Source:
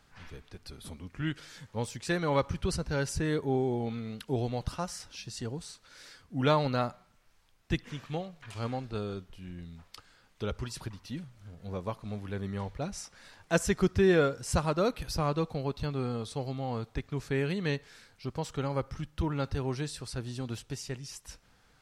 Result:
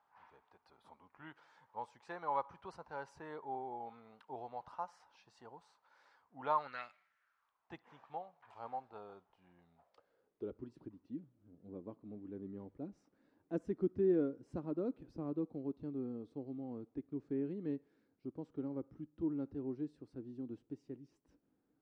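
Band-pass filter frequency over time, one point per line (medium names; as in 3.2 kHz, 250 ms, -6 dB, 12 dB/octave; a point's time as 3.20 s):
band-pass filter, Q 4.2
6.51 s 900 Hz
6.86 s 2.5 kHz
7.74 s 840 Hz
9.65 s 840 Hz
10.58 s 300 Hz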